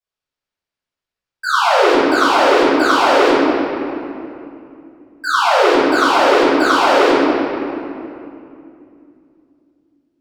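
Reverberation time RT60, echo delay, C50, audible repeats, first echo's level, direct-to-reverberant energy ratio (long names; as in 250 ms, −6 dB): 2.7 s, no echo audible, −6.0 dB, no echo audible, no echo audible, −17.5 dB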